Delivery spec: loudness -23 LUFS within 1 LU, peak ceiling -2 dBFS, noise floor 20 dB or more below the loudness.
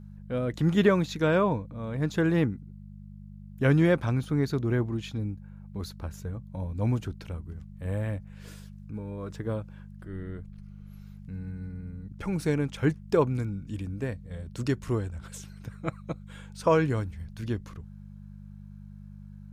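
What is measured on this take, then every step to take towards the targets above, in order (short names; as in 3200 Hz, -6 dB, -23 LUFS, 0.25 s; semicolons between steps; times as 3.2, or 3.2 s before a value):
hum 50 Hz; harmonics up to 200 Hz; hum level -43 dBFS; loudness -29.5 LUFS; peak -9.5 dBFS; loudness target -23.0 LUFS
-> de-hum 50 Hz, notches 4; gain +6.5 dB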